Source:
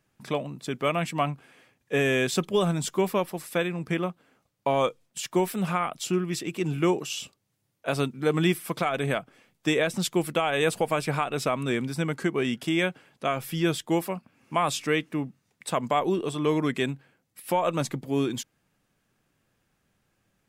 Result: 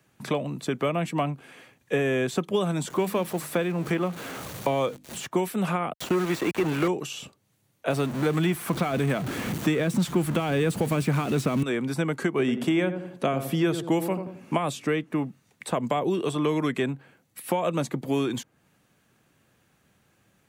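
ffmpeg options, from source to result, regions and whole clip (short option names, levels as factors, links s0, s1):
-filter_complex "[0:a]asettb=1/sr,asplit=3[s0][s1][s2];[s0]atrim=end=2.904[s3];[s1]atrim=start=2.9:end=5.27,asetpts=PTS-STARTPTS,afade=t=in:d=0.004:c=qsin,afade=t=out:st=2.366:d=0.004:c=qsin,aeval=exprs='val(0)+0.5*0.0133*sgn(val(0))':c=same,bandreject=f=50:t=h:w=6,bandreject=f=100:t=h:w=6,bandreject=f=150:t=h:w=6,bandreject=f=200:t=h:w=6,bandreject=f=250:t=h:w=6,bandreject=f=300:t=h:w=6[s4];[s2]atrim=start=5.266[s5];[s3][s4]acrossfade=d=0.004:c1=hsin:c2=qsin[s6];[s6][s5]acrossfade=d=0.004:c1=qsin:c2=hsin,asettb=1/sr,asplit=3[s7][s8][s9];[s7]atrim=end=5.934[s10];[s8]atrim=start=5.93:end=6.88,asetpts=PTS-STARTPTS,afade=t=in:d=0.004:c=qsin,afade=t=out:st=0.946:d=0.004:c=qsin,asplit=2[s11][s12];[s12]highpass=f=720:p=1,volume=11.2,asoftclip=type=tanh:threshold=0.224[s13];[s11][s13]amix=inputs=2:normalize=0,lowpass=f=2000:p=1,volume=0.501,aeval=exprs='val(0)*gte(abs(val(0)),0.0335)':c=same[s14];[s9]atrim=start=6.876[s15];[s10][s14]acrossfade=d=0.004:c1=hsin:c2=qsin[s16];[s16][s15]acrossfade=d=0.004:c1=qsin:c2=hsin,asettb=1/sr,asplit=3[s17][s18][s19];[s17]atrim=end=7.904[s20];[s18]atrim=start=7.9:end=11.63,asetpts=PTS-STARTPTS,afade=t=in:d=0.004:c=qsin,afade=t=out:st=3.726:d=0.004:c=qsin,aeval=exprs='val(0)+0.5*0.0299*sgn(val(0))':c=same,asubboost=boost=8.5:cutoff=250[s21];[s19]atrim=start=11.626[s22];[s20][s21]acrossfade=d=0.004:c1=hsin:c2=qsin[s23];[s23][s22]acrossfade=d=0.004:c1=qsin:c2=hsin,asettb=1/sr,asplit=3[s24][s25][s26];[s24]atrim=end=12.394[s27];[s25]atrim=start=12.39:end=14.58,asetpts=PTS-STARTPTS,afade=t=in:d=0.004:c=qsin,afade=t=out:st=2.186:d=0.004:c=qsin,equalizer=f=280:t=o:w=3:g=5.5,asplit=2[s28][s29];[s29]adelay=88,lowpass=f=930:p=1,volume=0.335,asplit=2[s30][s31];[s31]adelay=88,lowpass=f=930:p=1,volume=0.35,asplit=2[s32][s33];[s33]adelay=88,lowpass=f=930:p=1,volume=0.35,asplit=2[s34][s35];[s35]adelay=88,lowpass=f=930:p=1,volume=0.35[s36];[s28][s30][s32][s34][s36]amix=inputs=5:normalize=0,atrim=end_sample=96579[s37];[s26]atrim=start=14.576[s38];[s27][s37]acrossfade=d=0.004:c1=hsin:c2=qsin[s39];[s39][s38]acrossfade=d=0.004:c1=qsin:c2=hsin,acrossover=split=200|630|1600[s40][s41][s42][s43];[s40]acompressor=threshold=0.00794:ratio=4[s44];[s41]acompressor=threshold=0.02:ratio=4[s45];[s42]acompressor=threshold=0.00794:ratio=4[s46];[s43]acompressor=threshold=0.00501:ratio=4[s47];[s44][s45][s46][s47]amix=inputs=4:normalize=0,highpass=63,bandreject=f=5100:w=14,volume=2.37"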